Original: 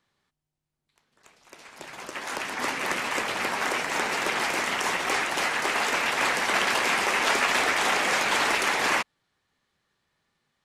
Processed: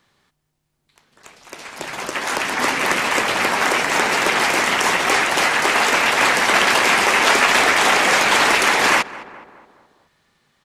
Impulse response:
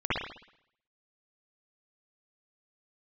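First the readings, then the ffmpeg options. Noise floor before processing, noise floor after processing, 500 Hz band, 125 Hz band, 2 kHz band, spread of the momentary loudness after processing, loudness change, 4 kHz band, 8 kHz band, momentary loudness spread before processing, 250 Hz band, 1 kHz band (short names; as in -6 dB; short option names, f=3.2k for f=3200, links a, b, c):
-83 dBFS, -71 dBFS, +9.0 dB, +9.5 dB, +9.0 dB, 9 LU, +9.0 dB, +9.0 dB, +9.0 dB, 9 LU, +9.0 dB, +9.0 dB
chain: -filter_complex "[0:a]asplit=2[a][b];[b]adelay=211,lowpass=f=1.7k:p=1,volume=-18dB,asplit=2[c][d];[d]adelay=211,lowpass=f=1.7k:p=1,volume=0.54,asplit=2[e][f];[f]adelay=211,lowpass=f=1.7k:p=1,volume=0.54,asplit=2[g][h];[h]adelay=211,lowpass=f=1.7k:p=1,volume=0.54,asplit=2[i][j];[j]adelay=211,lowpass=f=1.7k:p=1,volume=0.54[k];[a][c][e][g][i][k]amix=inputs=6:normalize=0,asplit=2[l][m];[m]acompressor=threshold=-35dB:ratio=6,volume=-3dB[n];[l][n]amix=inputs=2:normalize=0,volume=7.5dB"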